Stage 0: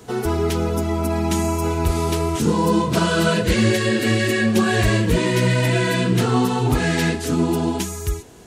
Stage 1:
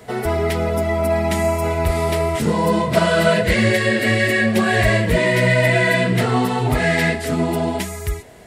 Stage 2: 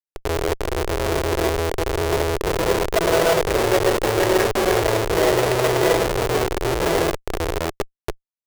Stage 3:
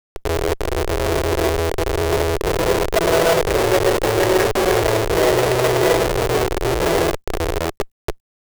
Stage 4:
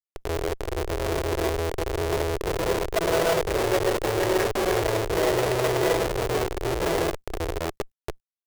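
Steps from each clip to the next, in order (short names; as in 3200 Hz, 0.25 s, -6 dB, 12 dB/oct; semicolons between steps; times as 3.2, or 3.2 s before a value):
thirty-one-band EQ 315 Hz -6 dB, 630 Hz +11 dB, 2000 Hz +11 dB, 6300 Hz -7 dB
Schmitt trigger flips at -13.5 dBFS; resonant low shelf 300 Hz -9 dB, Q 3; gain +1.5 dB
in parallel at -5 dB: soft clip -21 dBFS, distortion -8 dB; on the sum: requantised 12-bit, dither none
core saturation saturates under 140 Hz; gain -6.5 dB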